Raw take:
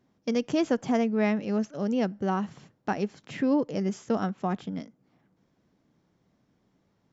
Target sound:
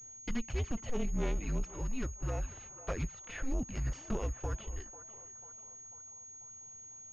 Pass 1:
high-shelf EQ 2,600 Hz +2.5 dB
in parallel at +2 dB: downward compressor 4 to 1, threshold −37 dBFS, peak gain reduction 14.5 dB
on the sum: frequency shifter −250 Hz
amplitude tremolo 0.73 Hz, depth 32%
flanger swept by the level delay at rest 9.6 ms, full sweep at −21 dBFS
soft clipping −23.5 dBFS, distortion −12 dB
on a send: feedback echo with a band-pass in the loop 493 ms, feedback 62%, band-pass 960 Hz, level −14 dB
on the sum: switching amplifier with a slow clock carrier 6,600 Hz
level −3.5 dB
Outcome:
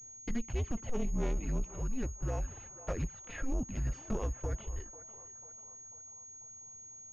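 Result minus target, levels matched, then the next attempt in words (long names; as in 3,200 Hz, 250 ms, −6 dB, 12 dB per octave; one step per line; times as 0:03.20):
downward compressor: peak gain reduction −5.5 dB; 4,000 Hz band −5.0 dB
high-shelf EQ 2,600 Hz +12 dB
in parallel at +2 dB: downward compressor 4 to 1, threshold −44 dBFS, peak gain reduction 20 dB
on the sum: frequency shifter −250 Hz
amplitude tremolo 0.73 Hz, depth 32%
flanger swept by the level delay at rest 9.6 ms, full sweep at −21 dBFS
soft clipping −23.5 dBFS, distortion −13 dB
on a send: feedback echo with a band-pass in the loop 493 ms, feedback 62%, band-pass 960 Hz, level −14 dB
on the sum: switching amplifier with a slow clock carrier 6,600 Hz
level −3.5 dB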